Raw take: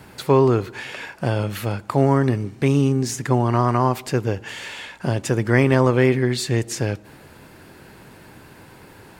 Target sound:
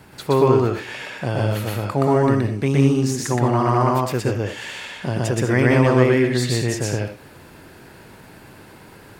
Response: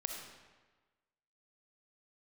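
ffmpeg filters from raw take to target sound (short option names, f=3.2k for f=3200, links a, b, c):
-filter_complex "[0:a]asplit=2[a][b];[1:a]atrim=start_sample=2205,atrim=end_sample=4410,adelay=122[c];[b][c]afir=irnorm=-1:irlink=0,volume=2dB[d];[a][d]amix=inputs=2:normalize=0,volume=-2.5dB"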